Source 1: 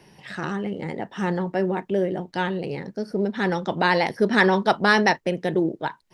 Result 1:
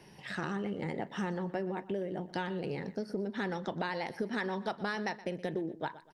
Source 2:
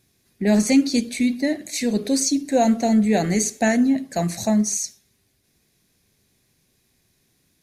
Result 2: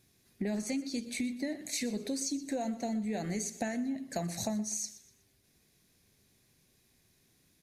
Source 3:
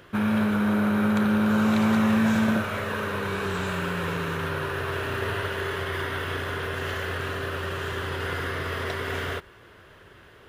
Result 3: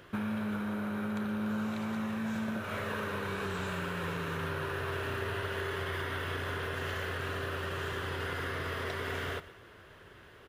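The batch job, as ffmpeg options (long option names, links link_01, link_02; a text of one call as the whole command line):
ffmpeg -i in.wav -filter_complex "[0:a]acompressor=threshold=-28dB:ratio=12,asplit=2[link_01][link_02];[link_02]aecho=0:1:122|244|366:0.141|0.048|0.0163[link_03];[link_01][link_03]amix=inputs=2:normalize=0,volume=-3.5dB" out.wav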